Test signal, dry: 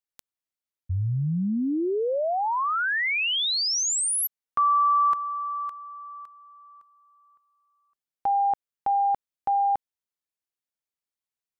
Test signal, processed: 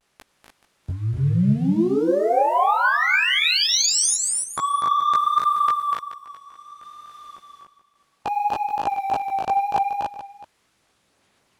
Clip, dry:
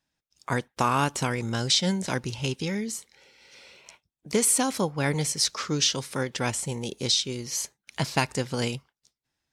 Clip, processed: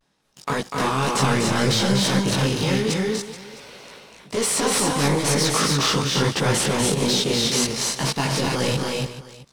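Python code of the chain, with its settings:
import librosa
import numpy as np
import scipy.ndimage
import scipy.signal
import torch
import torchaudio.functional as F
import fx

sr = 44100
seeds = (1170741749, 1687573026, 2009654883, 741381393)

y = fx.bin_compress(x, sr, power=0.6)
y = fx.high_shelf(y, sr, hz=4700.0, db=-8.5)
y = fx.leveller(y, sr, passes=2)
y = fx.level_steps(y, sr, step_db=24)
y = 10.0 ** (-14.5 / 20.0) * np.tanh(y / 10.0 ** (-14.5 / 20.0))
y = fx.vibrato(y, sr, rate_hz=0.62, depth_cents=53.0)
y = fx.chorus_voices(y, sr, voices=4, hz=1.0, base_ms=18, depth_ms=3.7, mix_pct=50)
y = fx.echo_multitap(y, sr, ms=(245, 282, 429, 662), db=(-5.0, -3.5, -13.5, -19.5))
y = F.gain(torch.from_numpy(y), 5.5).numpy()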